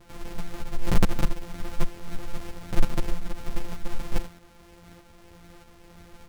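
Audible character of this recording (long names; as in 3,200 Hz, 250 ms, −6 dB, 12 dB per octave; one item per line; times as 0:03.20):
a buzz of ramps at a fixed pitch in blocks of 256 samples
tremolo saw up 1.6 Hz, depth 45%
a shimmering, thickened sound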